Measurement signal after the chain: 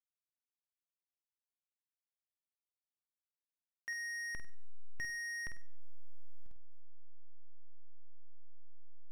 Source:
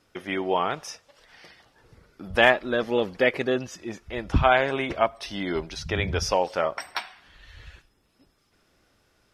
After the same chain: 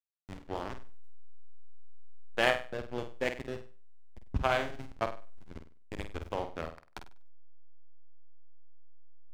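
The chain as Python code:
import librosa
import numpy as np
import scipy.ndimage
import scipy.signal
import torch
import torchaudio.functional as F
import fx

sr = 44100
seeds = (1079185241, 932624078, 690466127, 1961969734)

y = fx.power_curve(x, sr, exponent=1.4)
y = fx.backlash(y, sr, play_db=-22.0)
y = fx.room_flutter(y, sr, wall_m=8.4, rt60_s=0.36)
y = F.gain(torch.from_numpy(y), -6.0).numpy()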